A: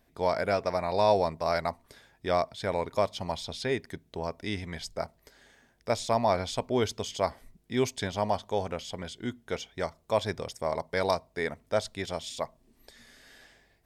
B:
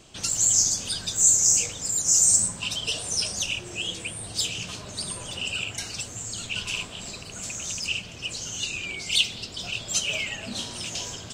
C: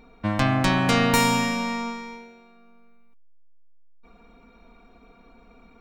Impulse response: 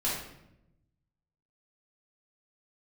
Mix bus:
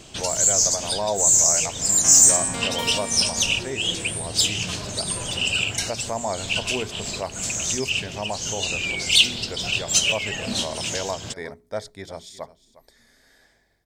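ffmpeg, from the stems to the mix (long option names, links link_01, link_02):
-filter_complex "[0:a]equalizer=frequency=2800:width=4.2:gain=-12,bandreject=frequency=60:width_type=h:width=6,bandreject=frequency=120:width_type=h:width=6,bandreject=frequency=180:width_type=h:width=6,bandreject=frequency=240:width_type=h:width=6,bandreject=frequency=300:width_type=h:width=6,bandreject=frequency=360:width_type=h:width=6,bandreject=frequency=420:width_type=h:width=6,volume=-9dB,asplit=3[link_01][link_02][link_03];[link_02]volume=-18dB[link_04];[1:a]volume=0dB[link_05];[2:a]highpass=210,adelay=1650,volume=-17.5dB[link_06];[link_03]apad=whole_len=499964[link_07];[link_05][link_07]sidechaincompress=threshold=-39dB:ratio=5:attack=9.9:release=189[link_08];[link_04]aecho=0:1:357:1[link_09];[link_01][link_08][link_06][link_09]amix=inputs=4:normalize=0,equalizer=frequency=1200:width_type=o:width=0.45:gain=-2.5,acontrast=88"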